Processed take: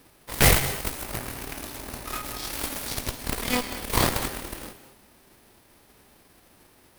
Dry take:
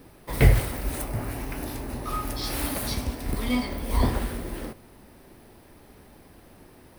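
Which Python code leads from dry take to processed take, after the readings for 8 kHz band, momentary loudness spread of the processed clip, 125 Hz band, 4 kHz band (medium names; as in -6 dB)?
+7.5 dB, 17 LU, -4.5 dB, +6.0 dB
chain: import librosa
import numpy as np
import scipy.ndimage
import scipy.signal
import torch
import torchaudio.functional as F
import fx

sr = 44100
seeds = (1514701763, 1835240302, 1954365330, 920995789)

y = fx.envelope_flatten(x, sr, power=0.6)
y = fx.cheby_harmonics(y, sr, harmonics=(8,), levels_db=(-7,), full_scale_db=-1.5)
y = fx.rev_gated(y, sr, seeds[0], gate_ms=250, shape='rising', drr_db=11.5)
y = F.gain(torch.from_numpy(y), -6.0).numpy()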